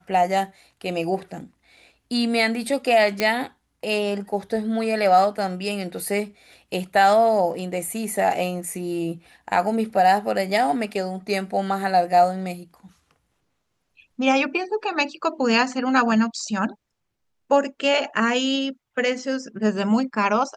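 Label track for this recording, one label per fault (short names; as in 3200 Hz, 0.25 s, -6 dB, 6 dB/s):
3.200000	3.200000	pop -7 dBFS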